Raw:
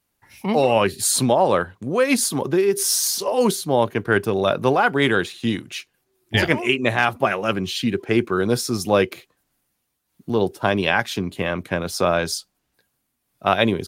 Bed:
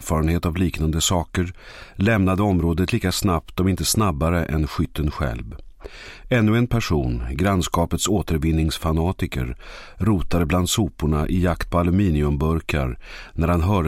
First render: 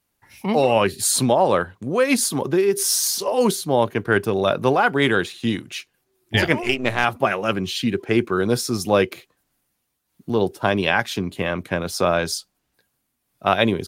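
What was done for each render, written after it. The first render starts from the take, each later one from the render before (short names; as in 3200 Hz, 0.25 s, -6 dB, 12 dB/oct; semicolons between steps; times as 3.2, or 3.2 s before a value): 6.63–7.04 half-wave gain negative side -7 dB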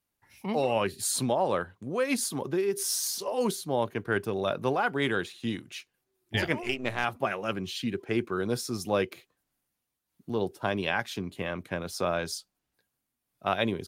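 gain -9.5 dB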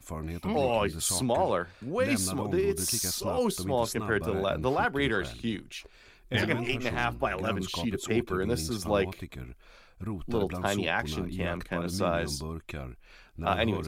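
add bed -16.5 dB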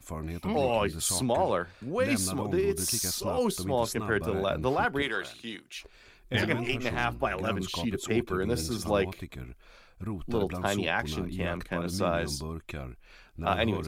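5.02–5.76 HPF 700 Hz 6 dB/oct; 8.47–8.92 flutter echo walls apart 11.3 m, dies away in 0.29 s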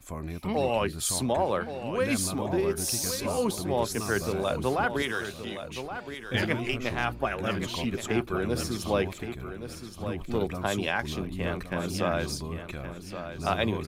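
feedback echo 1.121 s, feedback 25%, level -10 dB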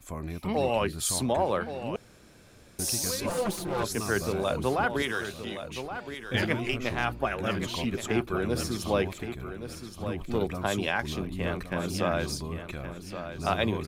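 1.96–2.79 room tone; 3.29–3.83 minimum comb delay 5.8 ms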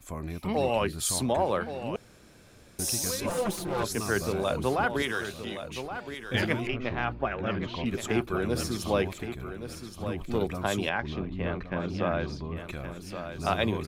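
2.81–3.54 notch 4500 Hz; 6.67–7.86 air absorption 240 m; 10.89–12.57 air absorption 230 m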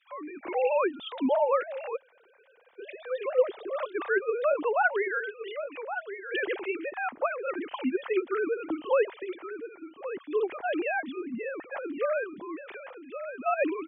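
sine-wave speech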